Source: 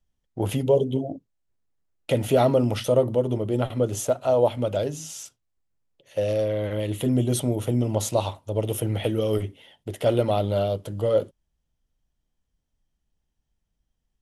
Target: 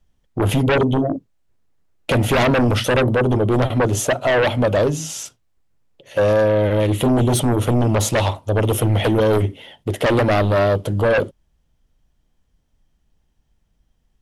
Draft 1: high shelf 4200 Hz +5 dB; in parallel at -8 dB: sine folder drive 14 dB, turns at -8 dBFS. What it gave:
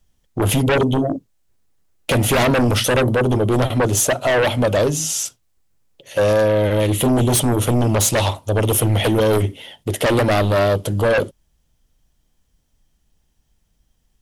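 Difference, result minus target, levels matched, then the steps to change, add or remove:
8000 Hz band +6.5 dB
change: high shelf 4200 Hz -6 dB

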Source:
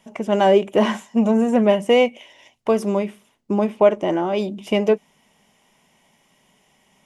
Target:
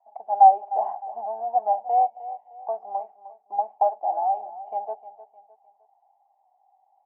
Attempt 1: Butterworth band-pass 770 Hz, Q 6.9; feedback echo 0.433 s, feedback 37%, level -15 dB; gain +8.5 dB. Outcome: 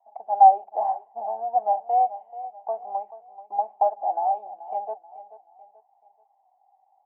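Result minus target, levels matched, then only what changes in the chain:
echo 0.127 s late
change: feedback echo 0.306 s, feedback 37%, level -15 dB

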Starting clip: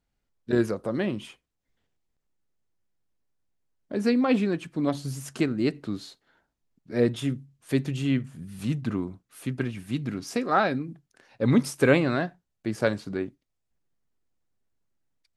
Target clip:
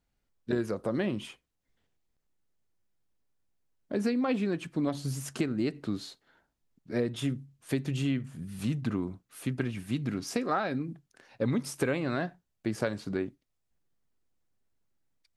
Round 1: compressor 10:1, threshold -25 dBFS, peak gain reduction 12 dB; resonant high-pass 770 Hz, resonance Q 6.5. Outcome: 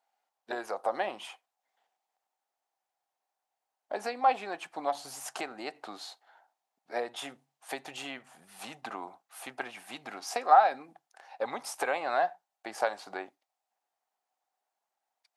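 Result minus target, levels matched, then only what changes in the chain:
1000 Hz band +11.5 dB
remove: resonant high-pass 770 Hz, resonance Q 6.5

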